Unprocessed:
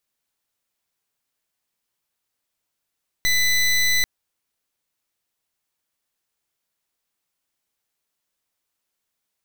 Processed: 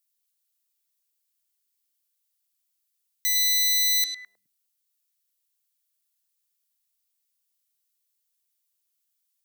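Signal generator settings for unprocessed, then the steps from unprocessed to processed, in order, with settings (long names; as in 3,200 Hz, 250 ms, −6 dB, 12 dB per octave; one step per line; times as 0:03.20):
pulse wave 2,000 Hz, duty 21% −18.5 dBFS 0.79 s
first-order pre-emphasis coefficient 0.97
on a send: echo through a band-pass that steps 104 ms, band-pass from 3,700 Hz, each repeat −1.4 octaves, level −2 dB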